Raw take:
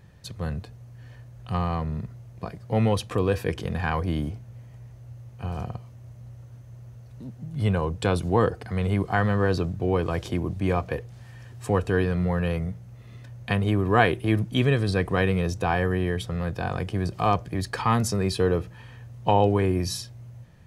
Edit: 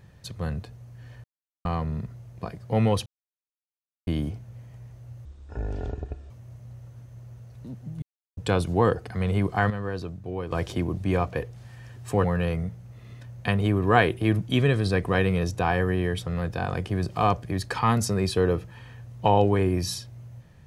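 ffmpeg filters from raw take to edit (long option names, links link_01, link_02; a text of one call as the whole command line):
ffmpeg -i in.wav -filter_complex "[0:a]asplit=12[link_01][link_02][link_03][link_04][link_05][link_06][link_07][link_08][link_09][link_10][link_11][link_12];[link_01]atrim=end=1.24,asetpts=PTS-STARTPTS,afade=type=out:start_time=1.236:duration=0.004:curve=hsin[link_13];[link_02]atrim=start=1.24:end=1.65,asetpts=PTS-STARTPTS,volume=0[link_14];[link_03]atrim=start=1.65:end=3.06,asetpts=PTS-STARTPTS,afade=type=in:duration=0.004:curve=hsin,afade=type=out:start_time=1.406:duration=0.004:curve=hsin[link_15];[link_04]atrim=start=3.06:end=4.07,asetpts=PTS-STARTPTS,volume=0[link_16];[link_05]atrim=start=4.07:end=5.254,asetpts=PTS-STARTPTS,afade=type=in:duration=0.004:curve=hsin[link_17];[link_06]atrim=start=5.25:end=5.86,asetpts=PTS-STARTPTS,asetrate=25578,aresample=44100,atrim=end_sample=46381,asetpts=PTS-STARTPTS[link_18];[link_07]atrim=start=5.856:end=7.58,asetpts=PTS-STARTPTS,afade=type=out:start_time=1.72:duration=0.004:curve=hsin[link_19];[link_08]atrim=start=7.58:end=7.93,asetpts=PTS-STARTPTS,volume=0[link_20];[link_09]atrim=start=7.93:end=9.262,asetpts=PTS-STARTPTS,afade=type=in:duration=0.004:curve=hsin[link_21];[link_10]atrim=start=9.258:end=10.072,asetpts=PTS-STARTPTS,volume=-8.5dB[link_22];[link_11]atrim=start=10.068:end=11.802[link_23];[link_12]atrim=start=12.268[link_24];[link_13][link_14][link_15][link_16][link_17]concat=n=5:v=0:a=1[link_25];[link_25][link_18]acrossfade=duration=0.004:curve1=hsin:curve2=hsin[link_26];[link_19][link_20][link_21]concat=n=3:v=0:a=1[link_27];[link_26][link_27]acrossfade=duration=0.004:curve1=hsin:curve2=hsin[link_28];[link_28][link_22]acrossfade=duration=0.004:curve1=hsin:curve2=hsin[link_29];[link_29][link_23]acrossfade=duration=0.004:curve1=hsin:curve2=hsin[link_30];[link_30][link_24]acrossfade=duration=0.004:curve1=hsin:curve2=hsin" out.wav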